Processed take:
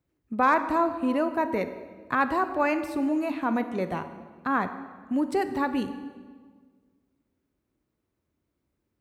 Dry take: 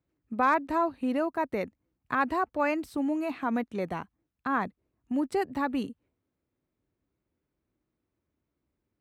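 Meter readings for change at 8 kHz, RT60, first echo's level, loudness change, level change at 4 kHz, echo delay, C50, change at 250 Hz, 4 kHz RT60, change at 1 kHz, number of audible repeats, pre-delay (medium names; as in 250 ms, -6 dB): no reading, 1.6 s, no echo, +3.0 dB, +3.0 dB, no echo, 11.0 dB, +3.0 dB, 1.2 s, +3.0 dB, no echo, 21 ms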